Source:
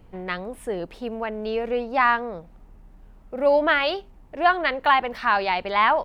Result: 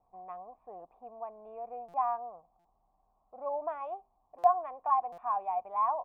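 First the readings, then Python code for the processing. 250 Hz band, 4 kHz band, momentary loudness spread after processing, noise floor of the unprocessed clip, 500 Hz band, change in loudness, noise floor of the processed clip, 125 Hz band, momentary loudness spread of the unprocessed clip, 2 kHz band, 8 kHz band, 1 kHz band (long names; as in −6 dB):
−27.5 dB, below −40 dB, 19 LU, −50 dBFS, −13.5 dB, −10.0 dB, −74 dBFS, below −25 dB, 13 LU, −34.0 dB, can't be measured, −8.0 dB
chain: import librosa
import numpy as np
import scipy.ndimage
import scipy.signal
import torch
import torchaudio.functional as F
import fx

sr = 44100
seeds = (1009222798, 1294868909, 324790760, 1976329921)

y = fx.formant_cascade(x, sr, vowel='a')
y = fx.buffer_glitch(y, sr, at_s=(1.88, 2.59, 4.38, 5.12), block=256, repeats=9)
y = y * 10.0 ** (-1.5 / 20.0)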